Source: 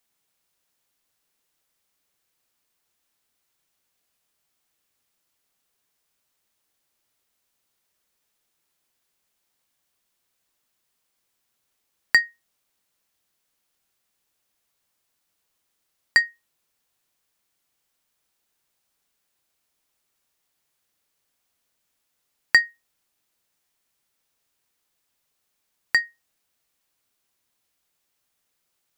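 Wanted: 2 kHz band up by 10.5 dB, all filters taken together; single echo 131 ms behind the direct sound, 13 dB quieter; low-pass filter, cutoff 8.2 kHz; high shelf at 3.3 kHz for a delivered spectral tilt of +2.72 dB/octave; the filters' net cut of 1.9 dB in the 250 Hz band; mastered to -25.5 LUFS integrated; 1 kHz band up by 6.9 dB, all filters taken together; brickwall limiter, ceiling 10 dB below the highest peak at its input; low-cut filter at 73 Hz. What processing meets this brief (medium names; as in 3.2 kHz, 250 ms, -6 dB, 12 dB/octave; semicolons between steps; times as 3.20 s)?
high-pass 73 Hz; low-pass 8.2 kHz; peaking EQ 250 Hz -3 dB; peaking EQ 1 kHz +5 dB; peaking EQ 2 kHz +8 dB; treble shelf 3.3 kHz +7.5 dB; peak limiter -2.5 dBFS; delay 131 ms -13 dB; trim -9 dB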